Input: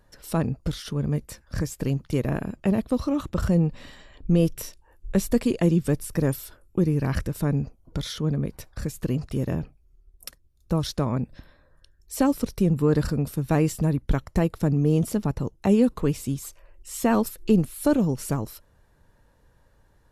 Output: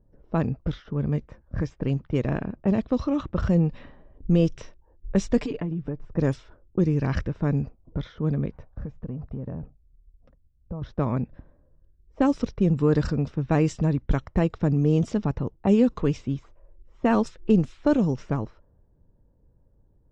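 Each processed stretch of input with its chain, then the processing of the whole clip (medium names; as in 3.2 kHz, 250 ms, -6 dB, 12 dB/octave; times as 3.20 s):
5.37–6.05 s: treble shelf 10 kHz -10 dB + comb 6.8 ms, depth 82% + compression 12:1, threshold -25 dBFS
8.52–10.82 s: peaking EQ 350 Hz -12.5 dB 0.25 oct + compression 10:1, threshold -28 dBFS
whole clip: band-stop 4.4 kHz, Q 11; level-controlled noise filter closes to 390 Hz, open at -17.5 dBFS; steep low-pass 6.8 kHz 36 dB/octave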